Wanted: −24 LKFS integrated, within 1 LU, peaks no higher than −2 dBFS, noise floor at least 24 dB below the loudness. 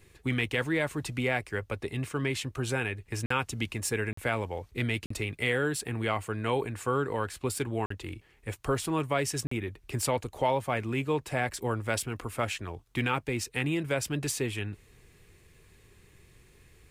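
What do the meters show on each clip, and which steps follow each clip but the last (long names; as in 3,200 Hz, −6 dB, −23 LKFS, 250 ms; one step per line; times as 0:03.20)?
number of dropouts 5; longest dropout 44 ms; integrated loudness −31.5 LKFS; sample peak −15.0 dBFS; target loudness −24.0 LKFS
→ repair the gap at 0:03.26/0:04.13/0:05.06/0:07.86/0:09.47, 44 ms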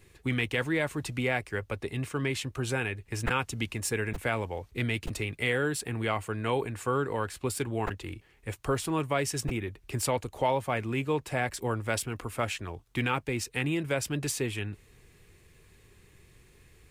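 number of dropouts 0; integrated loudness −31.5 LKFS; sample peak −15.0 dBFS; target loudness −24.0 LKFS
→ level +7.5 dB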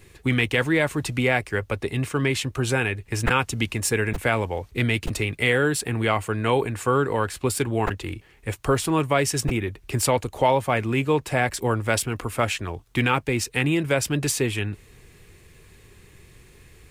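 integrated loudness −24.0 LKFS; sample peak −7.5 dBFS; background noise floor −53 dBFS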